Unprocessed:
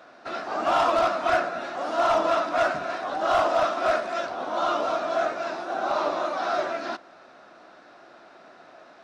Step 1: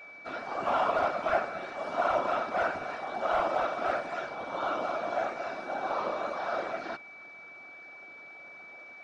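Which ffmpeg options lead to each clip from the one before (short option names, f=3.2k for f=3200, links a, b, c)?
-filter_complex "[0:a]afftfilt=real='hypot(re,im)*cos(2*PI*random(0))':imag='hypot(re,im)*sin(2*PI*random(1))':win_size=512:overlap=0.75,aeval=exprs='val(0)+0.00501*sin(2*PI*2300*n/s)':c=same,acrossover=split=3000[a][b];[b]acompressor=threshold=-53dB:ratio=4:attack=1:release=60[c];[a][c]amix=inputs=2:normalize=0"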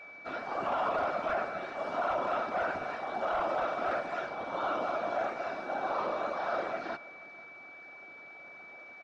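-af "highshelf=f=6.1k:g=-7.5,alimiter=limit=-23dB:level=0:latency=1:release=16,aecho=1:1:485:0.0891"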